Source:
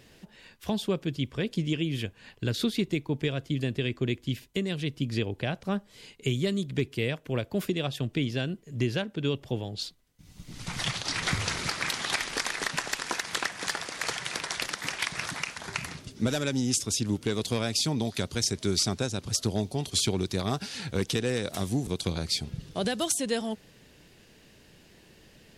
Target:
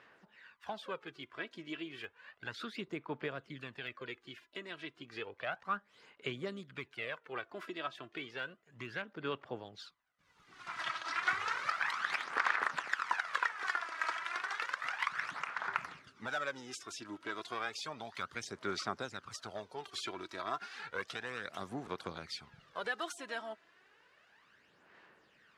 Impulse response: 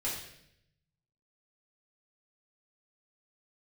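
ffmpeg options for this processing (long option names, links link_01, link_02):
-filter_complex "[0:a]bandpass=frequency=1300:width_type=q:width=2.5:csg=0,asplit=2[link_01][link_02];[link_02]asetrate=58866,aresample=44100,atempo=0.749154,volume=-18dB[link_03];[link_01][link_03]amix=inputs=2:normalize=0,aphaser=in_gain=1:out_gain=1:delay=3.1:decay=0.54:speed=0.32:type=sinusoidal,volume=1.5dB"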